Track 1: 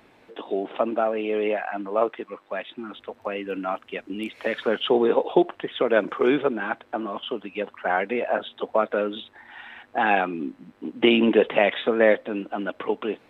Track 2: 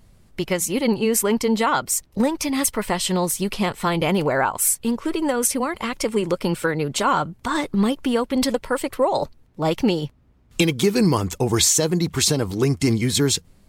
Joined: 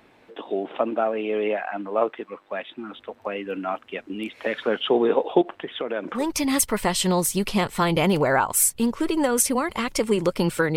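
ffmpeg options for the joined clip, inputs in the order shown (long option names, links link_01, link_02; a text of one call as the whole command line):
ffmpeg -i cue0.wav -i cue1.wav -filter_complex "[0:a]asettb=1/sr,asplit=3[link_01][link_02][link_03];[link_01]atrim=end=5.414[link_04];[link_02]atrim=start=5.41:end=6.27,asetpts=PTS-STARTPTS,afade=type=in:duration=0.004:curve=qsin,afade=type=out:start_time=0.856:duration=0.004:curve=qsin,acompressor=threshold=-26dB:ratio=2.5:attack=3.2:release=140:knee=1:detection=peak[link_05];[link_03]atrim=start=6.266[link_06];[link_04][link_05]acrossfade=duration=0.004:curve1=hsin:curve2=qsin[link_07];[link_07][link_06]acrossfade=duration=0.004:curve1=qsin:curve2=hsin,apad=whole_dur=10.76,atrim=end=10.76,atrim=end=6.27,asetpts=PTS-STARTPTS[link_08];[1:a]atrim=start=2.18:end=6.81,asetpts=PTS-STARTPTS[link_09];[link_08][link_09]acrossfade=duration=0.14:curve1=tri:curve2=tri" out.wav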